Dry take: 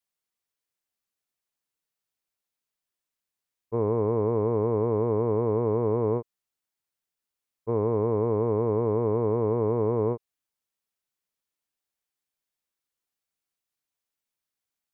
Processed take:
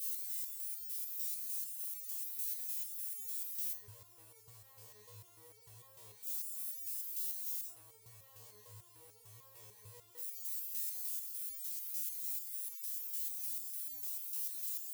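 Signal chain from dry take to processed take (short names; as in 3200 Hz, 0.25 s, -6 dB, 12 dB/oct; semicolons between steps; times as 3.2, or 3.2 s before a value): switching spikes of -21 dBFS; EQ curve 110 Hz 0 dB, 170 Hz -29 dB, 1300 Hz -8 dB; sample gate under -45 dBFS; limiter -28 dBFS, peak gain reduction 5 dB; tilt +2.5 dB/oct; flutter echo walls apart 3.2 m, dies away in 0.25 s; stepped resonator 6.7 Hz 75–450 Hz; gain -8 dB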